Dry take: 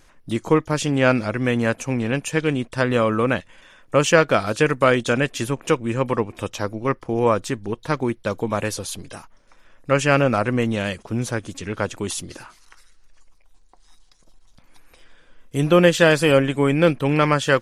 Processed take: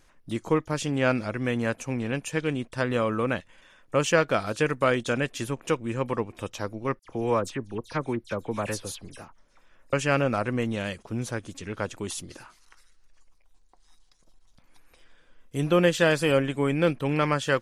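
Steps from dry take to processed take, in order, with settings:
0:06.99–0:09.93: all-pass dispersion lows, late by 63 ms, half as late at 3,000 Hz
level −6.5 dB

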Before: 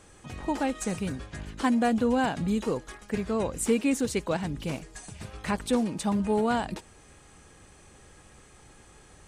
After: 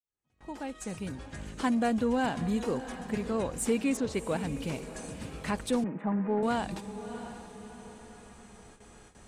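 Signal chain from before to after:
fade in at the beginning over 1.59 s
0:03.97–0:04.41: high-frequency loss of the air 110 metres
on a send: feedback delay with all-pass diffusion 664 ms, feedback 44%, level −13 dB
on the sum: noise gate with hold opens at −41 dBFS
0:05.84–0:06.43: elliptic band-pass filter 160–2,000 Hz, stop band 40 dB
pitch vibrato 0.42 Hz 16 cents
in parallel at −8.5 dB: soft clipping −28.5 dBFS, distortion −8 dB
on the sum: level −4.5 dB

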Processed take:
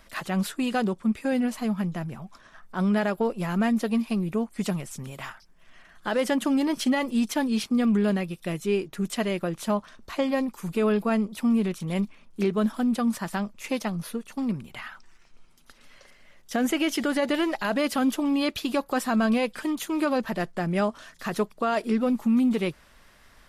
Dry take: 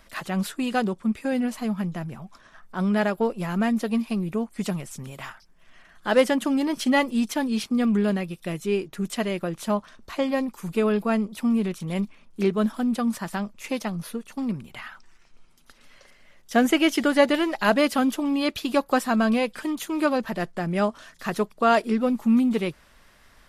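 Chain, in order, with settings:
brickwall limiter −16 dBFS, peak gain reduction 11 dB

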